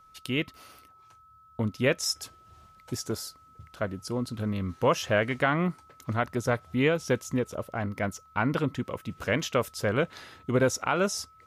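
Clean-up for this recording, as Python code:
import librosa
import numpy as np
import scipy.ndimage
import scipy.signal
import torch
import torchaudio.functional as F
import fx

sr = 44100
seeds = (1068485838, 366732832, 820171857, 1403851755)

y = fx.notch(x, sr, hz=1300.0, q=30.0)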